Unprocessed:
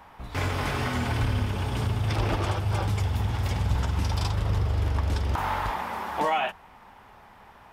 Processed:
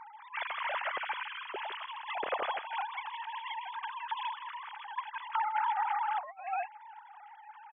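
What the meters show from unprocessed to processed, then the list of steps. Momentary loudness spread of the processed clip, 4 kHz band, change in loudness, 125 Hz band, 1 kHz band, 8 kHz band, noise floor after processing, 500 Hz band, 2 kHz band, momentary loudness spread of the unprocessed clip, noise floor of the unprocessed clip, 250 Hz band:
12 LU, -6.5 dB, -8.5 dB, under -40 dB, -2.0 dB, under -35 dB, -53 dBFS, -10.0 dB, -3.5 dB, 3 LU, -52 dBFS, under -25 dB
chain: formants replaced by sine waves; delay 160 ms -11.5 dB; compressor with a negative ratio -24 dBFS, ratio -0.5; trim -7.5 dB

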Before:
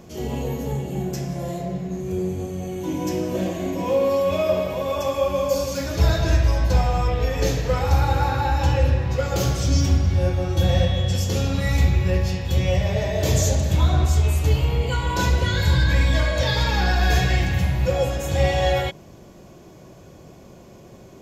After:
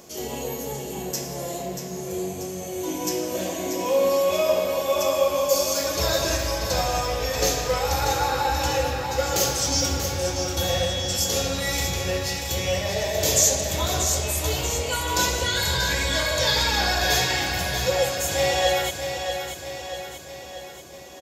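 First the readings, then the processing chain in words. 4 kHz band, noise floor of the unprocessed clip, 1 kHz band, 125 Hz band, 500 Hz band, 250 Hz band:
+6.0 dB, -45 dBFS, +1.0 dB, -11.0 dB, 0.0 dB, -5.5 dB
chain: tone controls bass -13 dB, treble +10 dB; on a send: feedback delay 636 ms, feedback 55%, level -7.5 dB

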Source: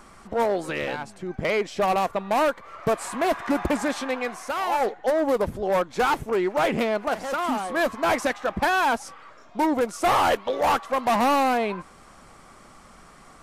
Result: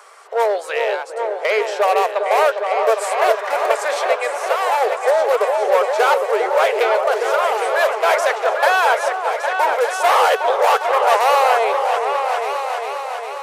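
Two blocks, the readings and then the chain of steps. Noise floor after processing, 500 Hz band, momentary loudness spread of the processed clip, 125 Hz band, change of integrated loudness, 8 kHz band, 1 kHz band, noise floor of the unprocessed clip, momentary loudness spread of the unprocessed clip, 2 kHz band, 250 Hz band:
-29 dBFS, +8.5 dB, 6 LU, under -40 dB, +7.0 dB, +6.5 dB, +8.0 dB, -50 dBFS, 8 LU, +8.0 dB, under -10 dB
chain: octave divider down 2 oct, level +3 dB; Chebyshev high-pass 420 Hz, order 6; on a send: delay with an opening low-pass 405 ms, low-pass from 750 Hz, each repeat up 2 oct, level -3 dB; on the sum: trim +6.5 dB

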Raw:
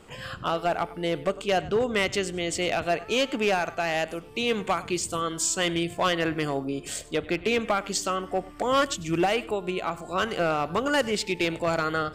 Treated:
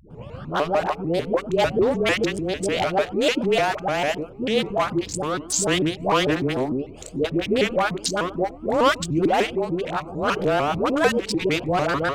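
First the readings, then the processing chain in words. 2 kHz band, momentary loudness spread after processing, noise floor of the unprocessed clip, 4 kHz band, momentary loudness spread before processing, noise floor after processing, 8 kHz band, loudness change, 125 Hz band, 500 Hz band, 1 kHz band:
+2.5 dB, 7 LU, -44 dBFS, +2.0 dB, 5 LU, -40 dBFS, +1.5 dB, +4.0 dB, +5.5 dB, +5.0 dB, +4.0 dB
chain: local Wiener filter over 25 samples; phase dispersion highs, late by 106 ms, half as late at 430 Hz; vibrato with a chosen wave saw up 6.7 Hz, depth 250 cents; trim +5.5 dB

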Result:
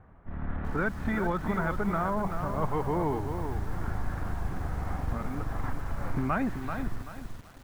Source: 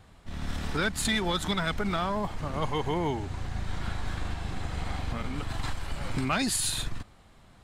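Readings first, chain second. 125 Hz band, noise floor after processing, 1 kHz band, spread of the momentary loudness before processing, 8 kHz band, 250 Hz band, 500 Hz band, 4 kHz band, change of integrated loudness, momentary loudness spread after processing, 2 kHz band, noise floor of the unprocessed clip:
+0.5 dB, -50 dBFS, +0.5 dB, 10 LU, -20.5 dB, +1.0 dB, +1.0 dB, -20.5 dB, -1.0 dB, 9 LU, -2.5 dB, -55 dBFS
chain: low-pass 1.7 kHz 24 dB/octave; bit-crushed delay 385 ms, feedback 35%, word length 8-bit, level -6.5 dB

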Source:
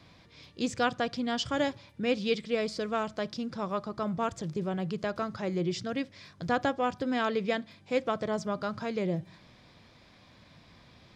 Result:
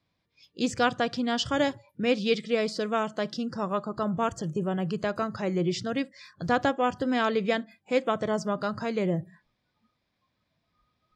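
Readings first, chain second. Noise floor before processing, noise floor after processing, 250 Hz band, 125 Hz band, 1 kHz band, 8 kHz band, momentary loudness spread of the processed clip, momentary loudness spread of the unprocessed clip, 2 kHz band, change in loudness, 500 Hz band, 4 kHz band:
-58 dBFS, -78 dBFS, +3.5 dB, +3.5 dB, +3.5 dB, +3.5 dB, 6 LU, 6 LU, +3.5 dB, +3.5 dB, +3.5 dB, +3.5 dB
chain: spectral noise reduction 24 dB; trim +3.5 dB

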